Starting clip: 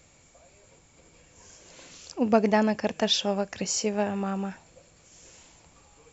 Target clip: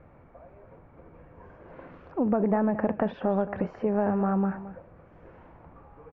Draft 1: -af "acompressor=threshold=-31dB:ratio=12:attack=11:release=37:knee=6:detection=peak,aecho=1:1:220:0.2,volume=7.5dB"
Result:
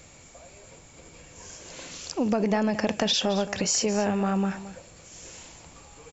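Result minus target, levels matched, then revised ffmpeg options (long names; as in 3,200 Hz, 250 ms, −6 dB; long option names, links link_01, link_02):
2,000 Hz band +5.0 dB
-af "acompressor=threshold=-31dB:ratio=12:attack=11:release=37:knee=6:detection=peak,lowpass=frequency=1500:width=0.5412,lowpass=frequency=1500:width=1.3066,aecho=1:1:220:0.2,volume=7.5dB"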